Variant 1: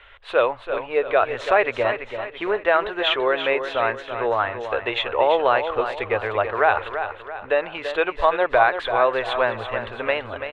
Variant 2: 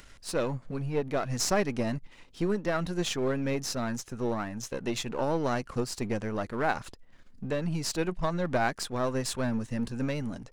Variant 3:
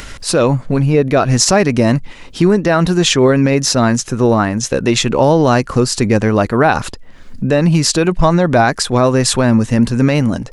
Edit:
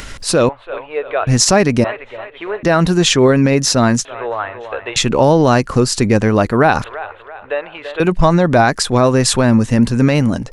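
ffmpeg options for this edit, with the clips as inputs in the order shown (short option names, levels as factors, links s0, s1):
-filter_complex "[0:a]asplit=4[s0][s1][s2][s3];[2:a]asplit=5[s4][s5][s6][s7][s8];[s4]atrim=end=0.492[s9];[s0]atrim=start=0.488:end=1.272[s10];[s5]atrim=start=1.268:end=1.842[s11];[s1]atrim=start=1.838:end=2.632[s12];[s6]atrim=start=2.628:end=4.052[s13];[s2]atrim=start=4.048:end=4.962[s14];[s7]atrim=start=4.958:end=6.842[s15];[s3]atrim=start=6.838:end=8.002[s16];[s8]atrim=start=7.998[s17];[s9][s10]acrossfade=d=0.004:c1=hsin:c2=hsin[s18];[s18][s11]acrossfade=d=0.004:c1=hsin:c2=hsin[s19];[s19][s12]acrossfade=d=0.004:c1=hsin:c2=hsin[s20];[s20][s13]acrossfade=d=0.004:c1=hsin:c2=hsin[s21];[s21][s14]acrossfade=d=0.004:c1=hsin:c2=hsin[s22];[s22][s15]acrossfade=d=0.004:c1=hsin:c2=hsin[s23];[s23][s16]acrossfade=d=0.004:c1=hsin:c2=hsin[s24];[s24][s17]acrossfade=d=0.004:c1=hsin:c2=hsin"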